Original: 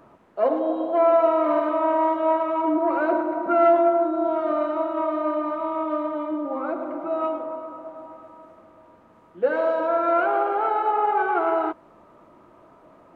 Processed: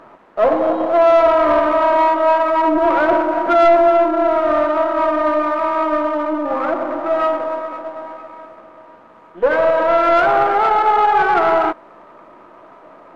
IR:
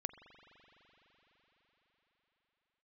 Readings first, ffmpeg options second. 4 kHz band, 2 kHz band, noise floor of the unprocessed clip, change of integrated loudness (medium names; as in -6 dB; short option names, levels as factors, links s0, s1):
no reading, +11.0 dB, -53 dBFS, +7.5 dB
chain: -filter_complex "[0:a]aeval=exprs='if(lt(val(0),0),0.447*val(0),val(0))':c=same,asplit=2[s0][s1];[s1]highpass=f=720:p=1,volume=6.31,asoftclip=type=tanh:threshold=0.398[s2];[s0][s2]amix=inputs=2:normalize=0,lowpass=f=1900:p=1,volume=0.501,volume=1.78"